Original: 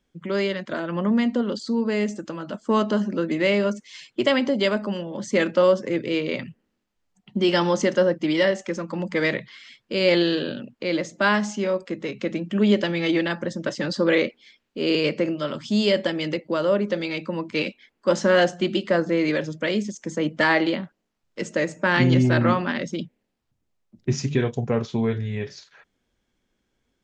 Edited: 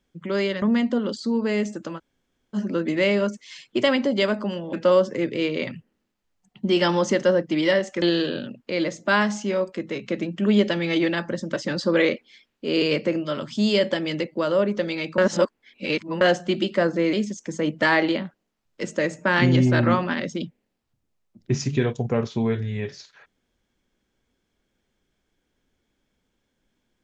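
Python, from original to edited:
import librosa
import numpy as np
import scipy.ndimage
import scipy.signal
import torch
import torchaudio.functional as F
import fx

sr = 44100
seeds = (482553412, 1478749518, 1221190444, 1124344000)

y = fx.edit(x, sr, fx.cut(start_s=0.62, length_s=0.43),
    fx.room_tone_fill(start_s=2.41, length_s=0.57, crossfade_s=0.04),
    fx.cut(start_s=5.16, length_s=0.29),
    fx.cut(start_s=8.74, length_s=1.41),
    fx.reverse_span(start_s=17.31, length_s=1.03),
    fx.cut(start_s=19.26, length_s=0.45), tone=tone)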